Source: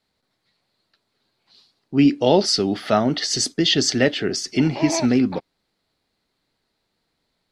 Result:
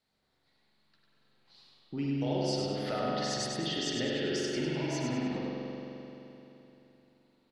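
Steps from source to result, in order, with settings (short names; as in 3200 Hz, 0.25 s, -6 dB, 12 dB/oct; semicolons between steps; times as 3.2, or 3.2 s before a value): compressor 3:1, threshold -31 dBFS, peak gain reduction 15.5 dB; on a send: feedback echo 0.1 s, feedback 43%, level -4.5 dB; on the sum: spring tank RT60 3.4 s, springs 43 ms, chirp 35 ms, DRR -4 dB; gain -7.5 dB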